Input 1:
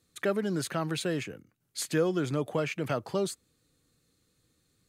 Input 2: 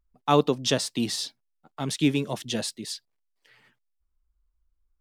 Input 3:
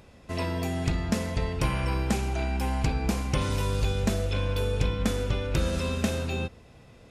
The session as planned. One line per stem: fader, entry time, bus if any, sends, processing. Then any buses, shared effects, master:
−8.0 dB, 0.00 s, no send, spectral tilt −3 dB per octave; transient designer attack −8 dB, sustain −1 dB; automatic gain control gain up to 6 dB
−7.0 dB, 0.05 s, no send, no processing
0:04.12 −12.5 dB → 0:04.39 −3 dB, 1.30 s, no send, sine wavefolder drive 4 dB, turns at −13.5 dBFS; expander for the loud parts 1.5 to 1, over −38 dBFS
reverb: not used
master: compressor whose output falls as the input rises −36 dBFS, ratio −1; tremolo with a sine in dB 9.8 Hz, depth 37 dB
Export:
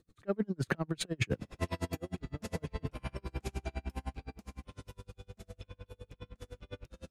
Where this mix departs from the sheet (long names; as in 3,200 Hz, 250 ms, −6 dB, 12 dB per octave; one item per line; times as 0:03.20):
stem 2: muted
stem 3 −12.5 dB → −2.5 dB